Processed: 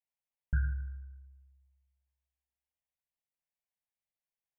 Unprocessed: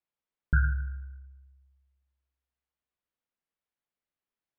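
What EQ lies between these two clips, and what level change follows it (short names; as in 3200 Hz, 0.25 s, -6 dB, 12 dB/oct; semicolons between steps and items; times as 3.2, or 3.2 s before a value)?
fixed phaser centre 1300 Hz, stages 6; -5.0 dB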